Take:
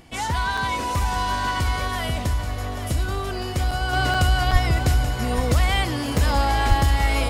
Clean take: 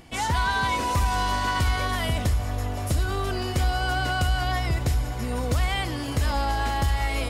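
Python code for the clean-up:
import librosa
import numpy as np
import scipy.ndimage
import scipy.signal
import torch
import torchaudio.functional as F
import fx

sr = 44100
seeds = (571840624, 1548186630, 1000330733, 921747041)

y = fx.highpass(x, sr, hz=140.0, slope=24, at=(4.52, 4.64), fade=0.02)
y = fx.highpass(y, sr, hz=140.0, slope=24, at=(6.68, 6.8), fade=0.02)
y = fx.fix_interpolate(y, sr, at_s=(0.57, 3.71, 4.14, 4.51, 6.18), length_ms=4.7)
y = fx.fix_echo_inverse(y, sr, delay_ms=831, level_db=-10.5)
y = fx.fix_level(y, sr, at_s=3.93, step_db=-4.5)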